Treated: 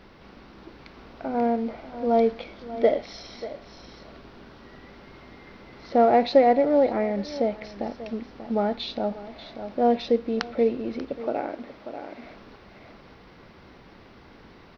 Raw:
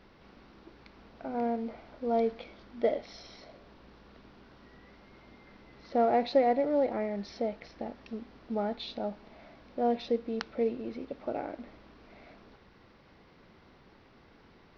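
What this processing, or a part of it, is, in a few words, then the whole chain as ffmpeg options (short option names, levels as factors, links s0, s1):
ducked delay: -filter_complex "[0:a]asettb=1/sr,asplit=3[s0][s1][s2];[s0]atrim=end=11.214[s3];[s1]atrim=start=11.21:end=12.23,asetpts=PTS-STARTPTS,afade=t=in:d=0.004:c=qsin,afade=t=out:st=1.016:d=0.004:c=qsin,highpass=f=200:p=1[s4];[s2]atrim=start=12.226[s5];[s3][s4]acrossfade=d=0.004:c1=hsin:c2=qsin[s6];[s6][s5]acrossfade=d=0.004:c1=qsin:c2=hsin,asplit=3[s7][s8][s9];[s8]adelay=588,volume=0.562[s10];[s9]apad=whole_len=677512[s11];[s10][s11]sidechaincompress=threshold=0.00794:ratio=8:attack=8.3:release=820[s12];[s7][s12]amix=inputs=2:normalize=0,volume=2.37"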